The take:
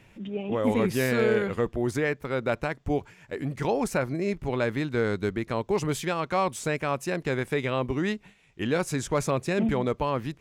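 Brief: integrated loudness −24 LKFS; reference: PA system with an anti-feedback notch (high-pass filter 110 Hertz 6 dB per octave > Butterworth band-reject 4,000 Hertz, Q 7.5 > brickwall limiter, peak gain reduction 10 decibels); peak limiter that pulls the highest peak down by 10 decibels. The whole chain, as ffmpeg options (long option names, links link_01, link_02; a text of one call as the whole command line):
ffmpeg -i in.wav -af "alimiter=limit=-24dB:level=0:latency=1,highpass=frequency=110:poles=1,asuperstop=centerf=4000:order=8:qfactor=7.5,volume=17dB,alimiter=limit=-15dB:level=0:latency=1" out.wav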